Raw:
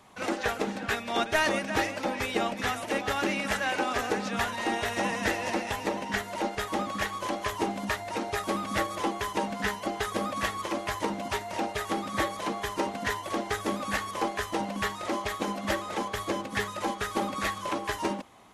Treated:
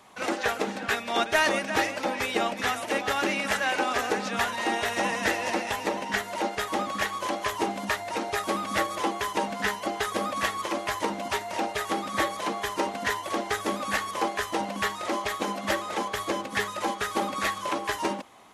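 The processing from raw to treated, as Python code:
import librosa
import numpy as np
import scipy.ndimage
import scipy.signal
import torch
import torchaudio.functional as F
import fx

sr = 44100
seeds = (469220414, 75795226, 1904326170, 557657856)

y = fx.low_shelf(x, sr, hz=190.0, db=-9.5)
y = y * 10.0 ** (3.0 / 20.0)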